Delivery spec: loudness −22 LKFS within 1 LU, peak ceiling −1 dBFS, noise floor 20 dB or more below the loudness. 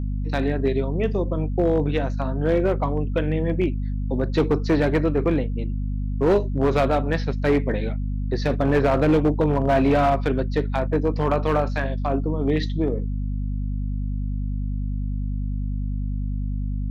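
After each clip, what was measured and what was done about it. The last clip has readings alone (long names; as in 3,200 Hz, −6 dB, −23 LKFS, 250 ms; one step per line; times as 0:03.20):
share of clipped samples 1.3%; peaks flattened at −13.0 dBFS; mains hum 50 Hz; hum harmonics up to 250 Hz; level of the hum −23 dBFS; integrated loudness −23.5 LKFS; sample peak −13.0 dBFS; target loudness −22.0 LKFS
→ clipped peaks rebuilt −13 dBFS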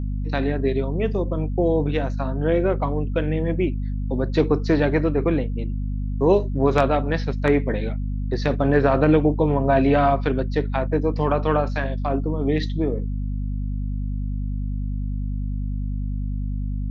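share of clipped samples 0.0%; mains hum 50 Hz; hum harmonics up to 250 Hz; level of the hum −23 dBFS
→ mains-hum notches 50/100/150/200/250 Hz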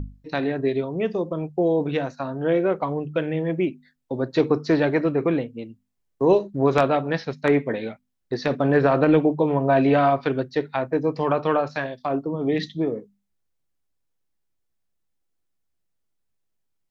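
mains hum none found; integrated loudness −23.0 LKFS; sample peak −3.5 dBFS; target loudness −22.0 LKFS
→ level +1 dB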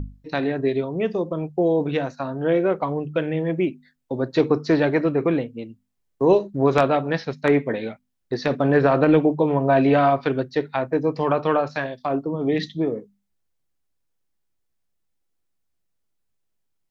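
integrated loudness −22.0 LKFS; sample peak −2.5 dBFS; background noise floor −73 dBFS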